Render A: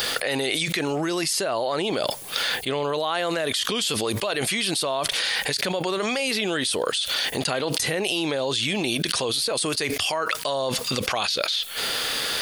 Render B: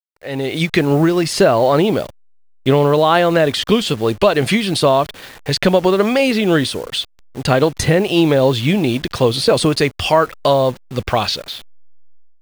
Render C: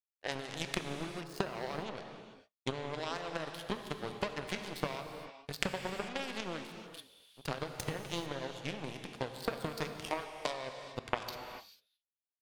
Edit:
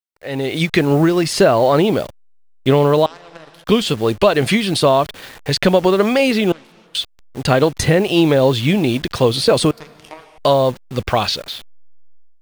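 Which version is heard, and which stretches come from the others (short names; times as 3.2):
B
3.06–3.64 from C
6.52–6.95 from C
9.71–10.38 from C
not used: A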